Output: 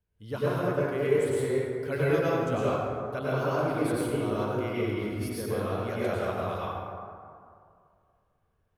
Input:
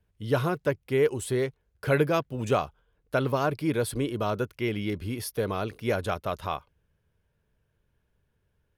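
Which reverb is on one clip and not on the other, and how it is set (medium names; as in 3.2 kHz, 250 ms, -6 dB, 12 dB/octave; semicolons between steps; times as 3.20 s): plate-style reverb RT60 2.3 s, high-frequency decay 0.4×, pre-delay 85 ms, DRR -8.5 dB; trim -10.5 dB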